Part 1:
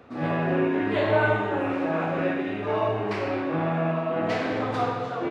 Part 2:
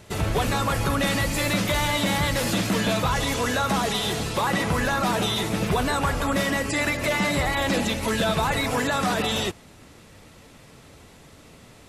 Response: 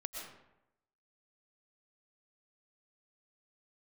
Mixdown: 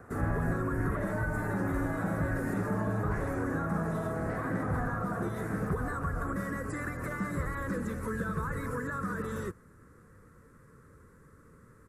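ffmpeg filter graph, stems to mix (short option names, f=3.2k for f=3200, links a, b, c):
-filter_complex "[0:a]alimiter=limit=-19dB:level=0:latency=1,volume=-4dB,asplit=2[a][b];[b]volume=-9dB[c];[1:a]firequalizer=gain_entry='entry(170,0);entry(280,-4);entry(490,0);entry(710,-24);entry(1100,-2);entry(2200,-10);entry(4100,-9);entry(8700,3)':delay=0.05:min_phase=1,volume=-6dB[d];[c]aecho=0:1:1046|2092|3138|4184|5230:1|0.32|0.102|0.0328|0.0105[e];[a][d][e]amix=inputs=3:normalize=0,highshelf=f=2.2k:t=q:w=3:g=-10.5,acrossover=split=260[f][g];[g]acompressor=threshold=-34dB:ratio=6[h];[f][h]amix=inputs=2:normalize=0"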